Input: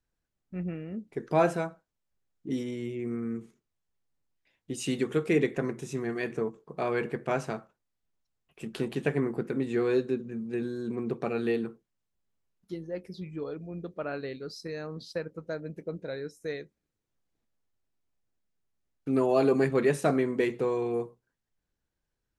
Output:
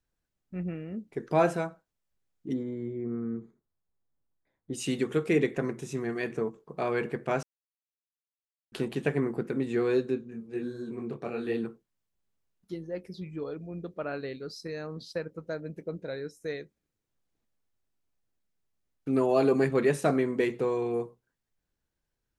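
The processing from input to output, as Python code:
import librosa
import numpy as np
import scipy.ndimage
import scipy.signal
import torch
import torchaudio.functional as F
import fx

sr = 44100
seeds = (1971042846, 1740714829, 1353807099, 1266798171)

y = fx.moving_average(x, sr, points=16, at=(2.52, 4.72), fade=0.02)
y = fx.detune_double(y, sr, cents=fx.line((10.15, 32.0), (11.56, 48.0)), at=(10.15, 11.56), fade=0.02)
y = fx.edit(y, sr, fx.silence(start_s=7.43, length_s=1.29), tone=tone)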